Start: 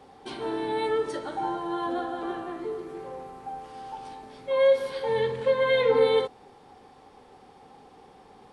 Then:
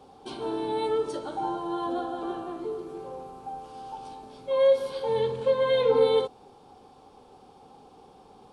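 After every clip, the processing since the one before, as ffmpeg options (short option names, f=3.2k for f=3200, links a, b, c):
-af "equalizer=f=1.9k:w=3:g=-13.5"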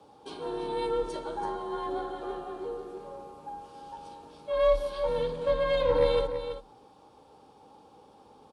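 -af "aeval=exprs='0.316*(cos(1*acos(clip(val(0)/0.316,-1,1)))-cos(1*PI/2))+0.0398*(cos(4*acos(clip(val(0)/0.316,-1,1)))-cos(4*PI/2))':c=same,aecho=1:1:332:0.335,afreqshift=34,volume=-3.5dB"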